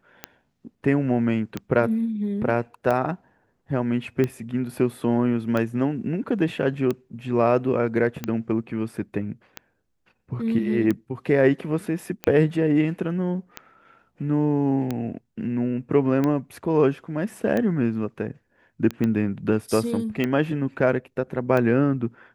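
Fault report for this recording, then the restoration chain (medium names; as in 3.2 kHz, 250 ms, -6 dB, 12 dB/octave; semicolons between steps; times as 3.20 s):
tick 45 rpm -13 dBFS
19.04 s: pop -14 dBFS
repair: de-click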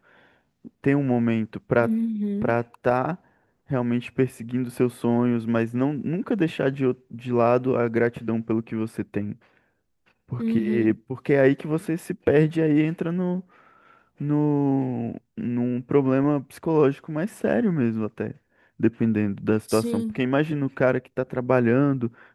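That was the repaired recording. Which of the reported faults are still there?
19.04 s: pop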